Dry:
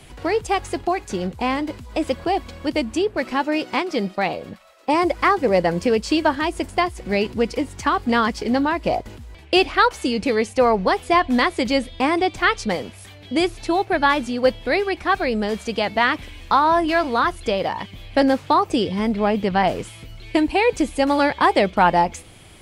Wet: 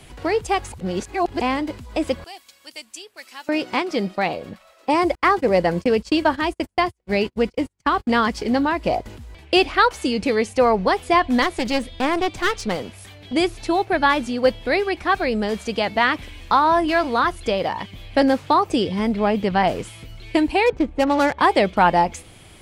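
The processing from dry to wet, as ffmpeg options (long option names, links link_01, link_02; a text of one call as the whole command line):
ffmpeg -i in.wav -filter_complex "[0:a]asettb=1/sr,asplit=3[link_01][link_02][link_03];[link_01]atrim=end=2.244[link_04];[link_02]atrim=start=2.24:end=3.49,asetpts=PTS-STARTPTS,afade=type=in:duration=0.004:curve=qsin,afade=type=out:start_time=1.246:duration=0.004:curve=qsin,aderivative[link_05];[link_03]atrim=start=3.486[link_06];[link_04][link_05]acrossfade=duration=0.004:curve1=hsin:curve2=qsin[link_07];[link_07][link_06]acrossfade=duration=0.004:curve1=qsin:curve2=hsin,asettb=1/sr,asplit=3[link_08][link_09][link_10];[link_08]atrim=end=5.154[link_11];[link_09]atrim=start=5.15:end=8.26,asetpts=PTS-STARTPTS,afade=type=in:duration=0.004:curve=qsin,afade=type=out:start_time=3.106:duration=0.004:curve=qsin,agate=range=-42dB:threshold=-29dB:ratio=16:release=100:detection=peak[link_12];[link_10]atrim=start=8.256[link_13];[link_11][link_12]acrossfade=duration=0.004:curve1=hsin:curve2=qsin[link_14];[link_14][link_13]acrossfade=duration=0.004:curve1=qsin:curve2=hsin,asettb=1/sr,asplit=3[link_15][link_16][link_17];[link_15]atrim=end=11.424[link_18];[link_16]atrim=start=11.42:end=13.33,asetpts=PTS-STARTPTS,afade=type=in:duration=0.004:curve=qsin,afade=type=out:start_time=1.906:duration=0.004:curve=qsin,aeval=exprs='clip(val(0),-1,0.0473)':channel_layout=same[link_19];[link_17]atrim=start=13.326[link_20];[link_18][link_19]acrossfade=duration=0.004:curve1=hsin:curve2=qsin[link_21];[link_21][link_20]acrossfade=duration=0.004:curve1=qsin:curve2=hsin,asettb=1/sr,asplit=3[link_22][link_23][link_24];[link_22]atrim=end=20.664[link_25];[link_23]atrim=start=20.66:end=21.39,asetpts=PTS-STARTPTS,afade=type=in:duration=0.004:curve=qsin,afade=type=out:start_time=0.726:duration=0.004:curve=qsin,adynamicsmooth=sensitivity=2:basefreq=850[link_26];[link_24]atrim=start=21.386[link_27];[link_25][link_26]acrossfade=duration=0.004:curve1=hsin:curve2=qsin[link_28];[link_28][link_27]acrossfade=duration=0.004:curve1=qsin:curve2=hsin,asplit=3[link_29][link_30][link_31];[link_29]atrim=end=0.722[link_32];[link_30]atrim=start=0.718:end=1.412,asetpts=PTS-STARTPTS,areverse[link_33];[link_31]atrim=start=1.408[link_34];[link_32][link_33]acrossfade=duration=0.004:curve1=hsin:curve2=hsin[link_35];[link_35][link_34]acrossfade=duration=0.004:curve1=hsin:curve2=hsin" out.wav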